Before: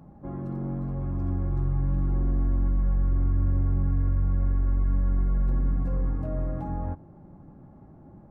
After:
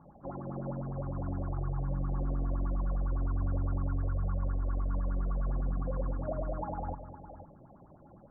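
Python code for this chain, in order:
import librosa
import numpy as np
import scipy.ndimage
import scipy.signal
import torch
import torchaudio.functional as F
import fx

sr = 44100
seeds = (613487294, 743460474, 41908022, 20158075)

y = fx.self_delay(x, sr, depth_ms=0.19)
y = fx.echo_multitap(y, sr, ms=(226, 503), db=(-13.5, -13.5))
y = fx.filter_lfo_lowpass(y, sr, shape='sine', hz=9.8, low_hz=520.0, high_hz=1500.0, q=7.4)
y = y * librosa.db_to_amplitude(-8.5)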